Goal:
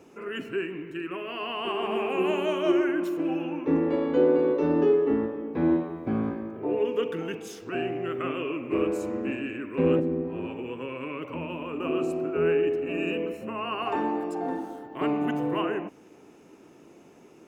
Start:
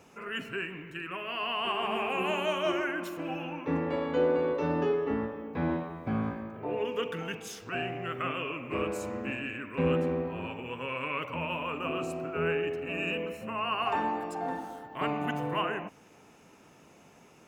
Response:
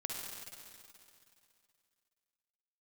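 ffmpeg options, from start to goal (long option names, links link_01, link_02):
-filter_complex "[0:a]equalizer=frequency=340:width=1.4:gain=13,asettb=1/sr,asplit=3[link_01][link_02][link_03];[link_01]atrim=end=9.994[link_04];[link_02]atrim=start=9.99:end=11.8,asetpts=PTS-STARTPTS,afade=type=in:duration=0.004:curve=qsin,afade=type=out:start_time=1.806:duration=0.004:curve=qsin,acrossover=split=360[link_05][link_06];[link_06]acompressor=threshold=-33dB:ratio=6[link_07];[link_05][link_07]amix=inputs=2:normalize=0[link_08];[link_03]atrim=start=11.796[link_09];[link_04][link_08]acrossfade=duration=0.004:curve1=hsin:curve2=qsin[link_10];[link_10][link_09]acrossfade=duration=0.004:curve1=qsin:curve2=hsin,volume=-2dB"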